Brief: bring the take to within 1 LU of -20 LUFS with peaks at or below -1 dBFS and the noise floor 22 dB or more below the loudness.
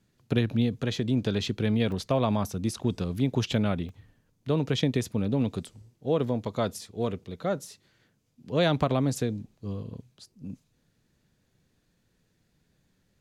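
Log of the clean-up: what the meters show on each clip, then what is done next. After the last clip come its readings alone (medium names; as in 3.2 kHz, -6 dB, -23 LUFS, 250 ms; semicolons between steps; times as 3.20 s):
dropouts 3; longest dropout 2.1 ms; loudness -28.5 LUFS; peak level -11.5 dBFS; loudness target -20.0 LUFS
-> interpolate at 1.92/3.89/8.81 s, 2.1 ms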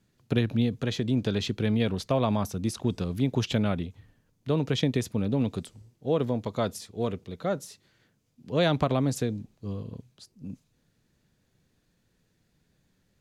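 dropouts 0; loudness -28.5 LUFS; peak level -11.5 dBFS; loudness target -20.0 LUFS
-> trim +8.5 dB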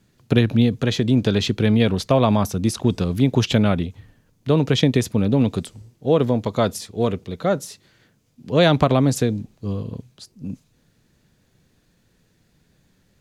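loudness -20.0 LUFS; peak level -3.0 dBFS; noise floor -63 dBFS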